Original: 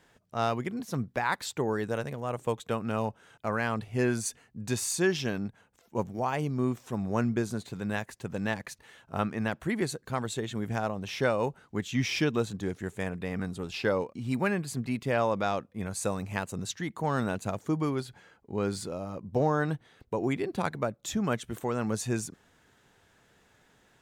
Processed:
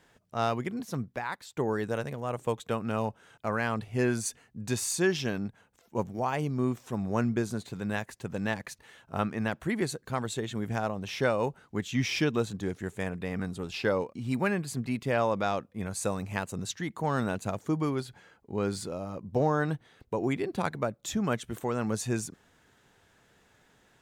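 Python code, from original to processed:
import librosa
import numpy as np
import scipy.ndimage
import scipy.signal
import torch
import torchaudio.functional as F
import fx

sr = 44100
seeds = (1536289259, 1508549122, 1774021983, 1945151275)

y = fx.edit(x, sr, fx.fade_out_to(start_s=0.81, length_s=0.76, floor_db=-15.5), tone=tone)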